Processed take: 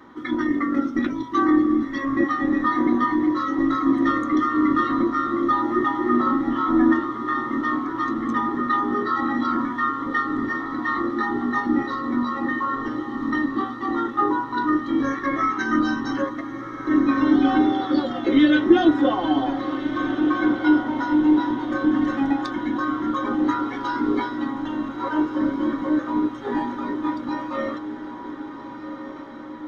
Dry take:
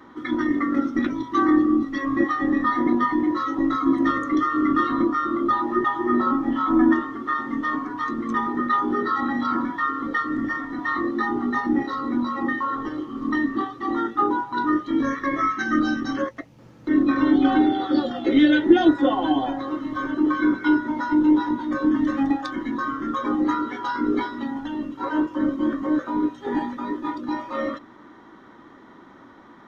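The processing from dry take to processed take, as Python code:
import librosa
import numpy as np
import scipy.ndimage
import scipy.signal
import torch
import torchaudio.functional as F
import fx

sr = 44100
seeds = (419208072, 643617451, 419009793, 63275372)

y = fx.echo_diffused(x, sr, ms=1535, feedback_pct=62, wet_db=-11.0)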